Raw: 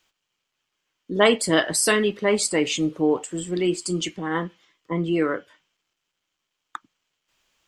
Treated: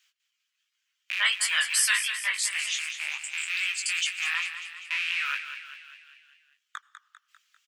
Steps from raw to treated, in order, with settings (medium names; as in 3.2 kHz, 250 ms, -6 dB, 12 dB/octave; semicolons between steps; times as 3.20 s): rattle on loud lows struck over -38 dBFS, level -17 dBFS; 4.35–5.25 s: low-pass 11 kHz 12 dB/octave; reverb removal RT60 0.98 s; inverse Chebyshev high-pass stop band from 340 Hz, stop band 70 dB; in parallel at -2 dB: peak limiter -19 dBFS, peak gain reduction 10.5 dB; on the sum: chorus 2.7 Hz, delay 15.5 ms, depth 6 ms; 2.37–3.50 s: ring modulator 120 Hz; frequency-shifting echo 198 ms, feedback 56%, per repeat +32 Hz, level -10 dB; on a send at -23 dB: reverberation RT60 1.3 s, pre-delay 74 ms